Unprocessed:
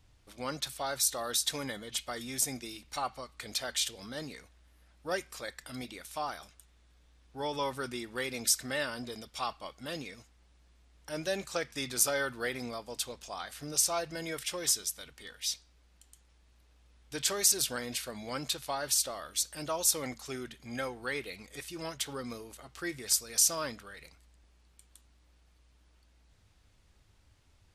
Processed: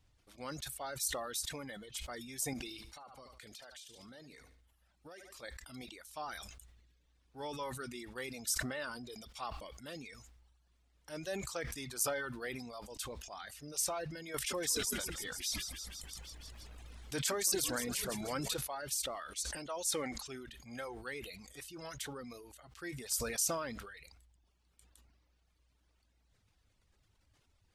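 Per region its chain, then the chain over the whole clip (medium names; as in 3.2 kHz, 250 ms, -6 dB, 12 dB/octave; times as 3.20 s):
2.53–5.43 s: feedback delay 72 ms, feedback 43%, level -10.5 dB + compression 20:1, threshold -41 dBFS
14.34–18.54 s: frequency-shifting echo 162 ms, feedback 61%, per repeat -52 Hz, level -11 dB + level flattener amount 50%
19.16–20.28 s: low-pass 11 kHz 24 dB/octave + peaking EQ 95 Hz -9.5 dB 1.5 oct
whole clip: reverb removal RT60 0.92 s; dynamic bell 3.8 kHz, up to -4 dB, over -43 dBFS, Q 0.95; decay stretcher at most 42 dB/s; trim -7 dB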